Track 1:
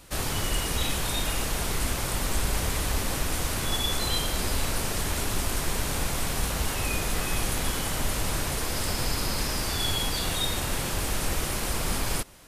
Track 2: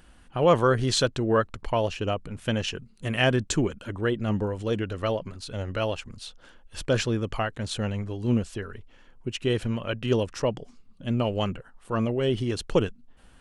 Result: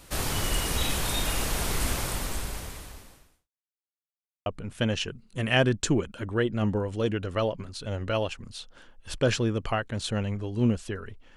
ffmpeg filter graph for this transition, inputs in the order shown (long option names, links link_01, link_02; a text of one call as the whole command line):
ffmpeg -i cue0.wav -i cue1.wav -filter_complex "[0:a]apad=whole_dur=11.36,atrim=end=11.36,asplit=2[link_01][link_02];[link_01]atrim=end=3.5,asetpts=PTS-STARTPTS,afade=type=out:start_time=1.94:duration=1.56:curve=qua[link_03];[link_02]atrim=start=3.5:end=4.46,asetpts=PTS-STARTPTS,volume=0[link_04];[1:a]atrim=start=2.13:end=9.03,asetpts=PTS-STARTPTS,afade=type=in:duration=0.004:curve=hsin[link_05];[link_03][link_04][link_05]concat=n=3:v=0:a=1" out.wav